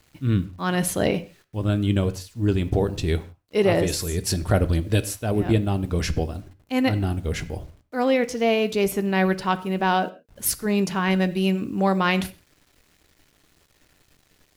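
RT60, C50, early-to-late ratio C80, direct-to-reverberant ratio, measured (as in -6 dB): no single decay rate, 17.0 dB, 20.0 dB, 10.5 dB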